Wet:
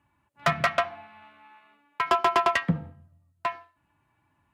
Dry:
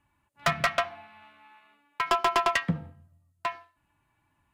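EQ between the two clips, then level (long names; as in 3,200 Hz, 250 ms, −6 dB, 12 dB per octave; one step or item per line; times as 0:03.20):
high-pass filter 67 Hz
high-shelf EQ 3,100 Hz −7.5 dB
+3.0 dB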